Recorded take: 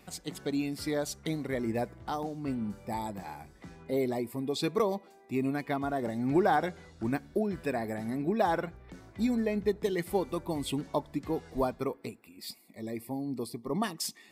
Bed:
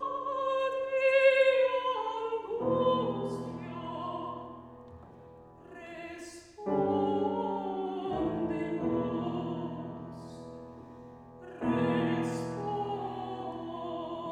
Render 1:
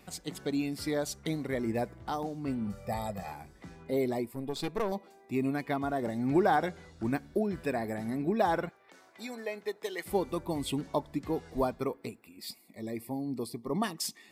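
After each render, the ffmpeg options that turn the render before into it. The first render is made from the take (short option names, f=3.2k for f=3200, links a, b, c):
-filter_complex "[0:a]asettb=1/sr,asplit=3[a][b][c];[a]atrim=end=2.674[d];[b]atrim=start=2.67:end=3.32,asetpts=PTS-STARTPTS,afade=t=in:d=0.004:c=qsin,afade=t=out:st=0.646:d=0.004:c=qsin,aecho=1:1:1.6:0.88,atrim=end_sample=28665[e];[c]atrim=start=3.316[f];[d][e]acrossfade=d=0.004:c1=hsin:c2=qsin[g];[g][f]acrossfade=d=0.004:c1=qsin:c2=hsin,asettb=1/sr,asplit=3[h][i][j];[h]atrim=end=4.254[k];[i]atrim=start=4.25:end=4.92,asetpts=PTS-STARTPTS,afade=t=in:d=0.004:c=qsin,afade=t=out:st=0.666:d=0.004:c=qsin,aeval=exprs='(tanh(17.8*val(0)+0.75)-tanh(0.75))/17.8':c=same[l];[j]atrim=start=4.916[m];[k][l]acrossfade=d=0.004:c1=hsin:c2=qsin[n];[n][m]acrossfade=d=0.004:c1=qsin:c2=hsin,asettb=1/sr,asplit=3[o][p][q];[o]atrim=end=8.694[r];[p]atrim=start=8.69:end=10.06,asetpts=PTS-STARTPTS,afade=t=in:d=0.004:c=qsin,afade=t=out:st=1.366:d=0.004:c=qsin,highpass=590[s];[q]atrim=start=10.056[t];[r][s]acrossfade=d=0.004:c1=hsin:c2=qsin[u];[u][t]acrossfade=d=0.004:c1=qsin:c2=hsin"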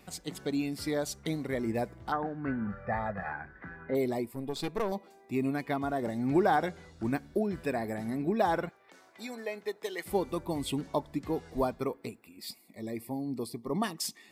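-filter_complex "[0:a]asettb=1/sr,asplit=3[a][b][c];[a]atrim=end=2.124[d];[b]atrim=start=2.12:end=3.95,asetpts=PTS-STARTPTS,afade=t=in:d=0.004:c=qsin,afade=t=out:st=1.826:d=0.004:c=qsin,lowpass=f=1.6k:t=q:w=8.7[e];[c]atrim=start=3.946[f];[d][e]acrossfade=d=0.004:c1=hsin:c2=qsin[g];[g][f]acrossfade=d=0.004:c1=qsin:c2=hsin"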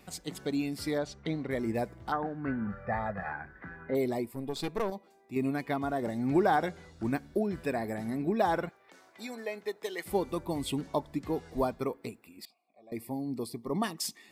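-filter_complex "[0:a]asettb=1/sr,asplit=3[a][b][c];[a]atrim=end=0.984[d];[b]atrim=start=0.98:end=1.51,asetpts=PTS-STARTPTS,afade=t=in:d=0.004:c=qsin,afade=t=out:st=0.526:d=0.004:c=qsin,lowpass=3.7k[e];[c]atrim=start=1.506[f];[d][e]acrossfade=d=0.004:c1=hsin:c2=qsin[g];[g][f]acrossfade=d=0.004:c1=qsin:c2=hsin,asettb=1/sr,asplit=3[h][i][j];[h]atrim=end=12.454[k];[i]atrim=start=12.45:end=12.92,asetpts=PTS-STARTPTS,afade=t=in:d=0.004:c=qsin,afade=t=out:st=0.466:d=0.004:c=qsin,asplit=3[l][m][n];[l]bandpass=f=730:t=q:w=8,volume=0dB[o];[m]bandpass=f=1.09k:t=q:w=8,volume=-6dB[p];[n]bandpass=f=2.44k:t=q:w=8,volume=-9dB[q];[o][p][q]amix=inputs=3:normalize=0[r];[j]atrim=start=12.916[s];[k][r]acrossfade=d=0.004:c1=hsin:c2=qsin[t];[t][s]acrossfade=d=0.004:c1=qsin:c2=hsin,asplit=3[u][v][w];[u]atrim=end=4.902[x];[v]atrim=start=4.898:end=5.362,asetpts=PTS-STARTPTS,volume=-5.5dB[y];[w]atrim=start=5.358[z];[x][y]acrossfade=d=0.004:c1=hsin:c2=hsin[aa];[aa][z]acrossfade=d=0.004:c1=hsin:c2=hsin"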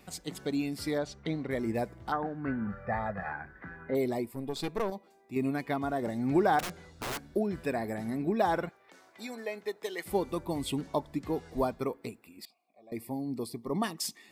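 -filter_complex "[0:a]asettb=1/sr,asplit=3[a][b][c];[a]atrim=end=6.594[d];[b]atrim=start=6.59:end=7.23,asetpts=PTS-STARTPTS,afade=t=in:d=0.004:c=qsin,afade=t=out:st=0.636:d=0.004:c=qsin,aeval=exprs='(mod(33.5*val(0)+1,2)-1)/33.5':c=same[e];[c]atrim=start=7.226[f];[d][e]acrossfade=d=0.004:c1=hsin:c2=qsin[g];[g][f]acrossfade=d=0.004:c1=qsin:c2=hsin"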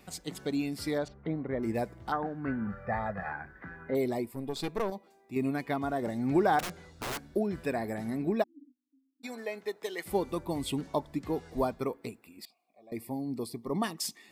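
-filter_complex "[0:a]asettb=1/sr,asplit=3[a][b][c];[a]atrim=end=1.084[d];[b]atrim=start=1.08:end=1.63,asetpts=PTS-STARTPTS,afade=t=in:d=0.004:c=qsin,afade=t=out:st=0.546:d=0.004:c=qsin,lowpass=1.5k[e];[c]atrim=start=1.626[f];[d][e]acrossfade=d=0.004:c1=hsin:c2=qsin[g];[g][f]acrossfade=d=0.004:c1=qsin:c2=hsin,asplit=3[h][i][j];[h]afade=t=out:st=8.42:d=0.02[k];[i]asuperpass=centerf=270:order=8:qfactor=5.2,afade=t=in:st=8.42:d=0.02,afade=t=out:st=9.23:d=0.02[l];[j]afade=t=in:st=9.23:d=0.02[m];[k][l][m]amix=inputs=3:normalize=0"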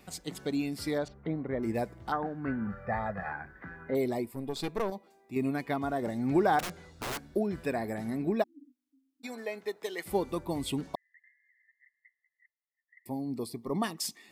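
-filter_complex "[0:a]asettb=1/sr,asplit=3[a][b][c];[a]atrim=end=10.954[d];[b]atrim=start=10.95:end=13.06,asetpts=PTS-STARTPTS,afade=t=in:d=0.004:c=qsin,afade=t=out:st=2.106:d=0.004:c=qsin,asuperpass=centerf=1900:order=20:qfactor=5.1[e];[c]atrim=start=13.056[f];[d][e]acrossfade=d=0.004:c1=hsin:c2=qsin[g];[g][f]acrossfade=d=0.004:c1=qsin:c2=hsin"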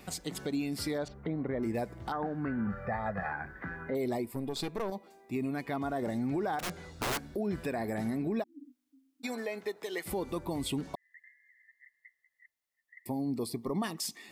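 -filter_complex "[0:a]asplit=2[a][b];[b]acompressor=threshold=-38dB:ratio=6,volume=-2dB[c];[a][c]amix=inputs=2:normalize=0,alimiter=level_in=1dB:limit=-24dB:level=0:latency=1:release=91,volume=-1dB"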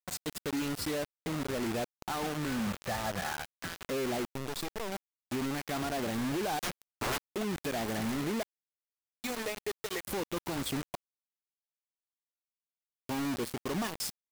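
-af "asoftclip=type=tanh:threshold=-28.5dB,acrusher=bits=5:mix=0:aa=0.000001"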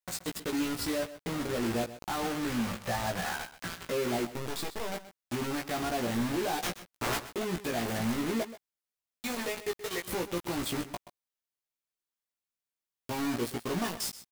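-filter_complex "[0:a]asplit=2[a][b];[b]adelay=17,volume=-3.5dB[c];[a][c]amix=inputs=2:normalize=0,aecho=1:1:128:0.188"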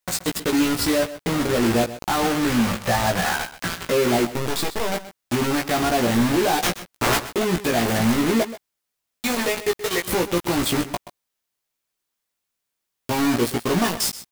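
-af "volume=11.5dB"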